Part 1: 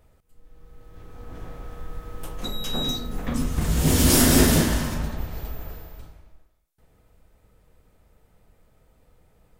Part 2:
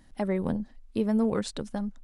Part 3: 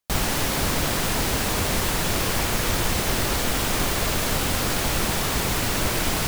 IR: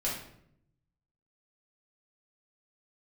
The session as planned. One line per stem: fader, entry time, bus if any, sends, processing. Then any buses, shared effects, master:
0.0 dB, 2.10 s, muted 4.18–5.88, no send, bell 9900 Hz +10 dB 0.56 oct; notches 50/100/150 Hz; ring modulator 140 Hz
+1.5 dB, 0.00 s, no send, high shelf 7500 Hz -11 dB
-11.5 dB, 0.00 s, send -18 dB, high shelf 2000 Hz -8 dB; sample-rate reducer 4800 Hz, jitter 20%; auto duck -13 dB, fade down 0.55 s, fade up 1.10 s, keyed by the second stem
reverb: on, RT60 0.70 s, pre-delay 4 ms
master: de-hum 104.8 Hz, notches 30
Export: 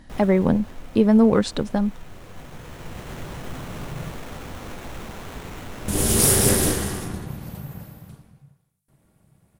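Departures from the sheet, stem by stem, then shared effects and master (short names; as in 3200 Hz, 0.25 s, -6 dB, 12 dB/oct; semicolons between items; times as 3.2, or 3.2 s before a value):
stem 2 +1.5 dB -> +10.0 dB; master: missing de-hum 104.8 Hz, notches 30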